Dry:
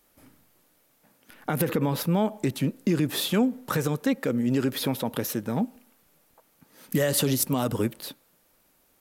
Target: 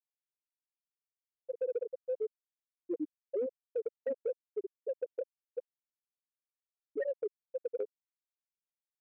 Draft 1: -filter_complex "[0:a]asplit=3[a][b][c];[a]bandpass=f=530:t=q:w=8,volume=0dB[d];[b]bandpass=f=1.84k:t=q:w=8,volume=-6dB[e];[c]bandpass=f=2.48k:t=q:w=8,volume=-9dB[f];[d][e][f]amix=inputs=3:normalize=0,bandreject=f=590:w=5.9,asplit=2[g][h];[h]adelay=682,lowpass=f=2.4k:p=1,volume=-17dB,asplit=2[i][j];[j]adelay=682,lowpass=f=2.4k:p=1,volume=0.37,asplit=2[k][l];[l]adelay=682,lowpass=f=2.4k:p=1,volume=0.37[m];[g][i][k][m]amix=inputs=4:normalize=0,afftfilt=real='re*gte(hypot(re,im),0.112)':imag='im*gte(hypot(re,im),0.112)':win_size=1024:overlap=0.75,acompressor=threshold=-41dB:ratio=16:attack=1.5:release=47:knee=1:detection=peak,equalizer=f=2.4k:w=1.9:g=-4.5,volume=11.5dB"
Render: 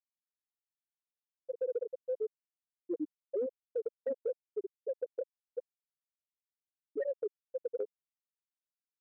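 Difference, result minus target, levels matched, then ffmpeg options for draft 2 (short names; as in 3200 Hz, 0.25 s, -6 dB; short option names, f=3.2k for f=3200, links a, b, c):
2000 Hz band -4.5 dB
-filter_complex "[0:a]asplit=3[a][b][c];[a]bandpass=f=530:t=q:w=8,volume=0dB[d];[b]bandpass=f=1.84k:t=q:w=8,volume=-6dB[e];[c]bandpass=f=2.48k:t=q:w=8,volume=-9dB[f];[d][e][f]amix=inputs=3:normalize=0,bandreject=f=590:w=5.9,asplit=2[g][h];[h]adelay=682,lowpass=f=2.4k:p=1,volume=-17dB,asplit=2[i][j];[j]adelay=682,lowpass=f=2.4k:p=1,volume=0.37,asplit=2[k][l];[l]adelay=682,lowpass=f=2.4k:p=1,volume=0.37[m];[g][i][k][m]amix=inputs=4:normalize=0,afftfilt=real='re*gte(hypot(re,im),0.112)':imag='im*gte(hypot(re,im),0.112)':win_size=1024:overlap=0.75,acompressor=threshold=-41dB:ratio=16:attack=1.5:release=47:knee=1:detection=peak,equalizer=f=2.4k:w=1.9:g=5.5,volume=11.5dB"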